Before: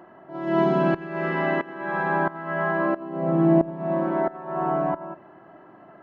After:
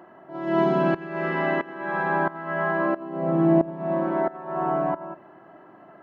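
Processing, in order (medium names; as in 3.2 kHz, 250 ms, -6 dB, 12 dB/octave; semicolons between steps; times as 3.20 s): bass shelf 94 Hz -7 dB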